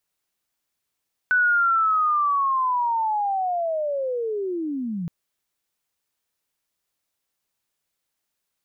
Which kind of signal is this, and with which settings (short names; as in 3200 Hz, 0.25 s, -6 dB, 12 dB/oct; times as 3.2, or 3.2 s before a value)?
chirp linear 1500 Hz -> 160 Hz -15.5 dBFS -> -25.5 dBFS 3.77 s